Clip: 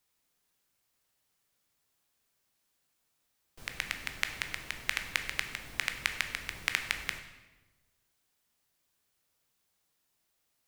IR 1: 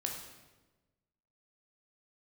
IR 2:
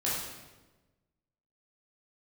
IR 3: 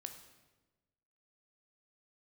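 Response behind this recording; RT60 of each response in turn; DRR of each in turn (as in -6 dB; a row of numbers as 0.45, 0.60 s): 3; 1.2, 1.2, 1.2 s; 0.5, -8.0, 6.0 dB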